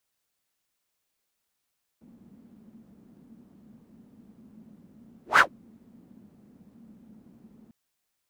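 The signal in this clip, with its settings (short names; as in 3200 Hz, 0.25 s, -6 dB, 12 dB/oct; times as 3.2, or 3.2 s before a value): whoosh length 5.70 s, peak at 3.38, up 0.15 s, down 0.12 s, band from 220 Hz, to 1600 Hz, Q 5.8, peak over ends 39.5 dB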